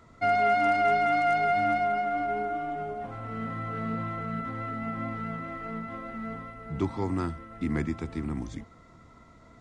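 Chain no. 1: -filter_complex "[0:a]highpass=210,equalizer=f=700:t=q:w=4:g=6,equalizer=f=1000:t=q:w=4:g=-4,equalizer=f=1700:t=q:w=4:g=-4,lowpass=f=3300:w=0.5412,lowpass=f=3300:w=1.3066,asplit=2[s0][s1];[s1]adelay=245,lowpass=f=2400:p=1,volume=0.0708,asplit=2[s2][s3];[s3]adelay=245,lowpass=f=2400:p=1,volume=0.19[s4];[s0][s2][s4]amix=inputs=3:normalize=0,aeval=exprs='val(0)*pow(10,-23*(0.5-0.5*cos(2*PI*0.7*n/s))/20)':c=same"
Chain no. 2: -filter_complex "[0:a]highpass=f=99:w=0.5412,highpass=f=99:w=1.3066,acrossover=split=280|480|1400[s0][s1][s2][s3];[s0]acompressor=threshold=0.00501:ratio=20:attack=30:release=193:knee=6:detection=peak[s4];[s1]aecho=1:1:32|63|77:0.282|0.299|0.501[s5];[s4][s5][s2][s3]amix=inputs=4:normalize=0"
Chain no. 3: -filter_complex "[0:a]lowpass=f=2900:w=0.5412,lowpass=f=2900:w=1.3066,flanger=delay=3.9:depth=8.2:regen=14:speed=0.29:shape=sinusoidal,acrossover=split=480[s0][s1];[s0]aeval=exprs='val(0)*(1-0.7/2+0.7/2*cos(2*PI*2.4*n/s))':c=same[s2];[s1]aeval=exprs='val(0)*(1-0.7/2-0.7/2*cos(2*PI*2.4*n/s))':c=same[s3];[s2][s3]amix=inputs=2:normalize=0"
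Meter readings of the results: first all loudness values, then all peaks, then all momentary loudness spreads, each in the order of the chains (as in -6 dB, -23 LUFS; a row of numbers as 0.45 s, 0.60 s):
-30.5 LUFS, -29.5 LUFS, -36.5 LUFS; -14.0 dBFS, -15.0 dBFS, -19.0 dBFS; 22 LU, 15 LU, 14 LU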